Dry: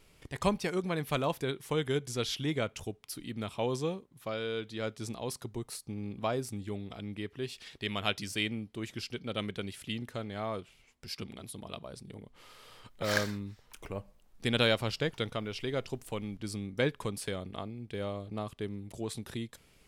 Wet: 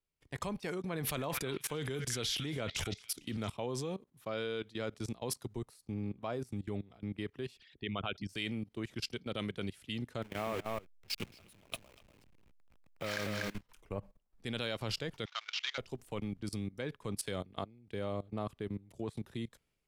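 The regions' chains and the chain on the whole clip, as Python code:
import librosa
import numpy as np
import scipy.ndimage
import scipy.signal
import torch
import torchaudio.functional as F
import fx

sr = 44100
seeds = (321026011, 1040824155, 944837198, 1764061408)

y = fx.chain(x, sr, fx.transient(attack_db=2, sustain_db=9),
    fx.echo_stepped(ms=225, hz=1900.0, octaves=0.7, feedback_pct=70, wet_db=-5.5), at=(0.93, 3.52))
y = fx.chain(y, sr, fx.envelope_sharpen(power=2.0),
    fx.peak_eq(hz=1400.0, db=4.5, octaves=0.9), at=(7.57, 8.29))
y = fx.chain(y, sr, fx.delta_hold(step_db=-41.0),
    fx.peak_eq(hz=2500.0, db=8.0, octaves=0.68),
    fx.echo_single(ms=242, db=-5.0), at=(10.22, 13.61))
y = fx.chain(y, sr, fx.cvsd(bps=32000),
    fx.highpass(hz=1000.0, slope=24),
    fx.peak_eq(hz=2600.0, db=7.0, octaves=2.0), at=(15.25, 15.78))
y = fx.level_steps(y, sr, step_db=20)
y = fx.band_widen(y, sr, depth_pct=40)
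y = y * 10.0 ** (3.0 / 20.0)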